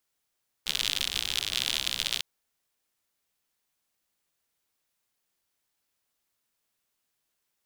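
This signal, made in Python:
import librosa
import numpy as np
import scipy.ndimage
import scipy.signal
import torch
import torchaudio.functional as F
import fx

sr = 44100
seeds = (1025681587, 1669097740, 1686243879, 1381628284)

y = fx.rain(sr, seeds[0], length_s=1.55, drops_per_s=74.0, hz=3400.0, bed_db=-15.0)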